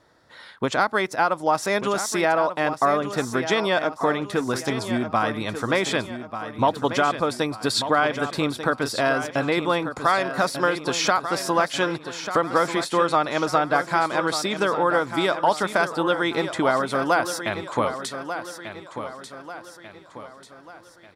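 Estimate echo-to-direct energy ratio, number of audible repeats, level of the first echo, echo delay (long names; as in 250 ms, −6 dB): −9.0 dB, 4, −10.0 dB, 1,191 ms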